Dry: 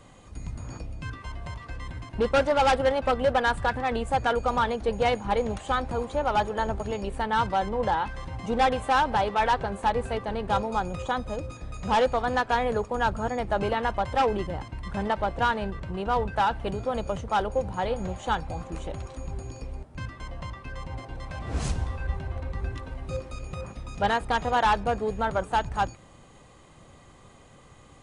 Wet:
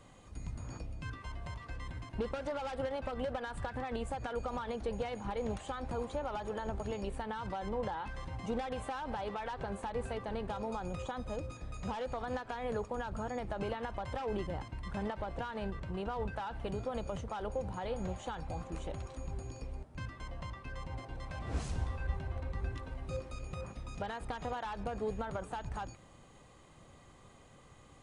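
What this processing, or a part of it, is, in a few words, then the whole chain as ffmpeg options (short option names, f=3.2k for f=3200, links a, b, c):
de-esser from a sidechain: -filter_complex "[0:a]asplit=2[a][b];[b]highpass=f=4k:p=1,apad=whole_len=1235935[c];[a][c]sidechaincompress=threshold=-42dB:ratio=6:attack=3.6:release=64,volume=-6dB"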